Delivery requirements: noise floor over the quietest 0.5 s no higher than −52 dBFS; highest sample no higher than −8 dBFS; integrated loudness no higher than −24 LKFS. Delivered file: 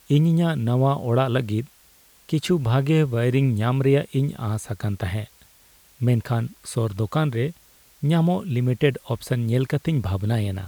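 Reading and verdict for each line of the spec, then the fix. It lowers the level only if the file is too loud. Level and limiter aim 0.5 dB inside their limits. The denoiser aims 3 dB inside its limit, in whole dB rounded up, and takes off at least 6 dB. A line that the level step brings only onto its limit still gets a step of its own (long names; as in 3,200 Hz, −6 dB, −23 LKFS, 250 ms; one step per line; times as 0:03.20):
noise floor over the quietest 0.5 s −55 dBFS: in spec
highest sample −6.5 dBFS: out of spec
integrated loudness −23.0 LKFS: out of spec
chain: level −1.5 dB
brickwall limiter −8.5 dBFS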